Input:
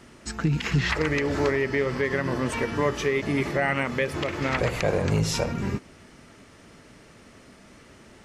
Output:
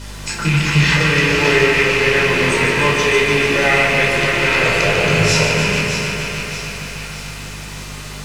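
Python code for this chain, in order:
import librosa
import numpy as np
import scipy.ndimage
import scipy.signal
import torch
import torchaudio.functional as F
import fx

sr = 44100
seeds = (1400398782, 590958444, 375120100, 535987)

p1 = fx.rattle_buzz(x, sr, strikes_db=-32.0, level_db=-18.0)
p2 = fx.dmg_noise_colour(p1, sr, seeds[0], colour='pink', level_db=-43.0)
p3 = scipy.signal.sosfilt(scipy.signal.butter(2, 7900.0, 'lowpass', fs=sr, output='sos'), p2)
p4 = fx.tilt_eq(p3, sr, slope=2.5)
p5 = p4 + fx.echo_split(p4, sr, split_hz=1100.0, low_ms=192, high_ms=621, feedback_pct=52, wet_db=-8.5, dry=0)
p6 = fx.room_shoebox(p5, sr, seeds[1], volume_m3=890.0, walls='furnished', distance_m=4.9)
p7 = fx.add_hum(p6, sr, base_hz=50, snr_db=14)
p8 = fx.echo_crushed(p7, sr, ms=147, feedback_pct=80, bits=8, wet_db=-7.0)
y = p8 * librosa.db_to_amplitude(1.0)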